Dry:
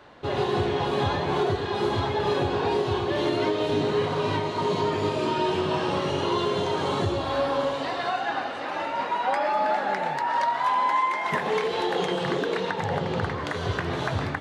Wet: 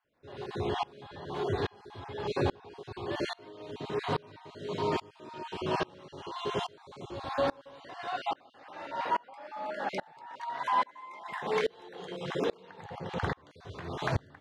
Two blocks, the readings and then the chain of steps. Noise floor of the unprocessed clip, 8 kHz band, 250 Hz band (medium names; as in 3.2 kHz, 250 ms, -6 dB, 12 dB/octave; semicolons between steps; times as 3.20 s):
-31 dBFS, -10.0 dB, -10.5 dB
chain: random holes in the spectrogram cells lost 25%; sawtooth tremolo in dB swelling 1.2 Hz, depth 30 dB